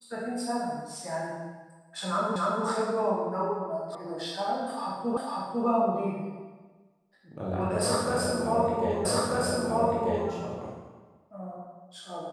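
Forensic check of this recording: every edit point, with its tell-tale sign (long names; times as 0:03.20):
0:02.36: the same again, the last 0.28 s
0:03.95: cut off before it has died away
0:05.17: the same again, the last 0.5 s
0:09.05: the same again, the last 1.24 s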